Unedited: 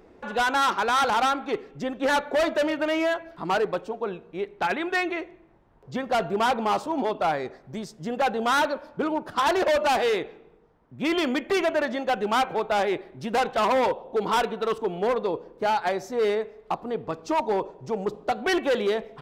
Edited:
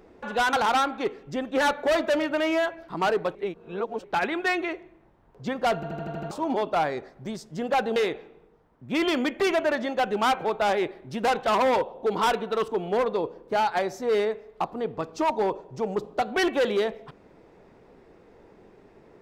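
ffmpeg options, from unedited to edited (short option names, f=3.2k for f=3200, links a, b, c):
-filter_complex "[0:a]asplit=12[a][b][c][d][e][f][g][h][i][j][k][l];[a]atrim=end=0.532[m];[b]atrim=start=1.008:end=3.832[n];[c]atrim=start=3.828:end=4.522,asetpts=PTS-STARTPTS,areverse[o];[d]atrim=start=4.518:end=6.312[p];[e]atrim=start=6.228:end=6.312[q];[f]atrim=start=6.228:end=6.312[r];[g]atrim=start=6.228:end=6.312[s];[h]atrim=start=6.228:end=6.312[t];[i]atrim=start=6.228:end=6.312[u];[j]atrim=start=6.228:end=6.312[v];[k]atrim=start=6.788:end=8.442[w];[l]atrim=start=10.058[x];[m][n]acrossfade=d=0.004:c1=hsin:c2=hsin[y];[y][o]acrossfade=d=0.004:c1=hsin:c2=hsin[z];[z][p]acrossfade=d=0.004:c1=hsin:c2=hsin[aa];[aa][q]acrossfade=d=0.004:c1=hsin:c2=hsin[ab];[ab][r]acrossfade=d=0.004:c1=hsin:c2=hsin[ac];[ac][s]acrossfade=d=0.004:c1=hsin:c2=hsin[ad];[ad][t]acrossfade=d=0.004:c1=hsin:c2=hsin[ae];[ae][u]acrossfade=d=0.004:c1=hsin:c2=hsin[af];[af][v]acrossfade=d=0.004:c1=hsin:c2=hsin[ag];[ag][w]acrossfade=d=0.004:c1=hsin:c2=hsin[ah];[ah][x]acrossfade=d=0.004:c1=hsin:c2=hsin"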